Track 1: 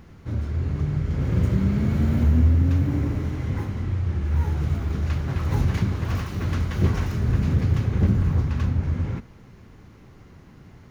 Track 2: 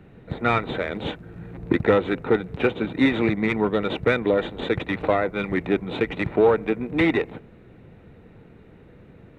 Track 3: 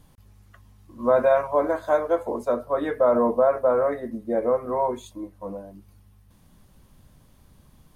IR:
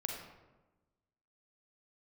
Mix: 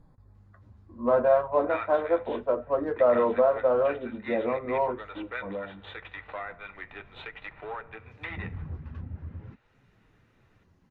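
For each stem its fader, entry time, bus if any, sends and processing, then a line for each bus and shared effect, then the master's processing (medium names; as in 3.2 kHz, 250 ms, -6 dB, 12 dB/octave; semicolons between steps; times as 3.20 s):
-11.0 dB, 0.35 s, no send, reverb removal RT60 0.51 s; auto duck -23 dB, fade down 1.15 s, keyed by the third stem
-5.0 dB, 1.25 s, send -14.5 dB, high-pass 1.1 kHz 12 dB/octave
+1.5 dB, 0.00 s, no send, local Wiener filter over 15 samples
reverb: on, RT60 1.1 s, pre-delay 36 ms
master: band-stop 2.2 kHz, Q 18; low-pass that closes with the level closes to 2.2 kHz, closed at -32.5 dBFS; flange 0.4 Hz, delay 6 ms, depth 7.7 ms, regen -49%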